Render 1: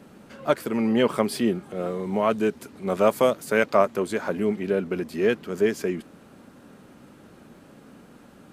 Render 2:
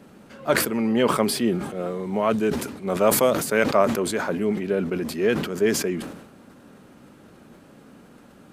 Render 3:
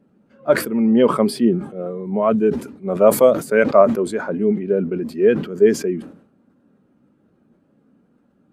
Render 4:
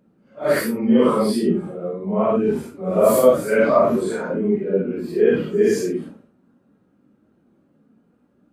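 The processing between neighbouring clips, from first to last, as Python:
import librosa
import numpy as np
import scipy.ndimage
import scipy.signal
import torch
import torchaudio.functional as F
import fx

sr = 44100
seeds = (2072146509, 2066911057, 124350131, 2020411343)

y1 = fx.sustainer(x, sr, db_per_s=65.0)
y2 = fx.spectral_expand(y1, sr, expansion=1.5)
y2 = y2 * librosa.db_to_amplitude(4.0)
y3 = fx.phase_scramble(y2, sr, seeds[0], window_ms=200)
y3 = y3 * librosa.db_to_amplitude(-1.0)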